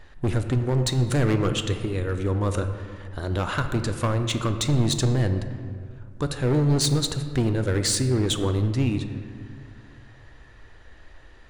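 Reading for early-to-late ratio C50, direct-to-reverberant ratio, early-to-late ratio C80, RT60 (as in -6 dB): 8.5 dB, 7.0 dB, 9.5 dB, 2.1 s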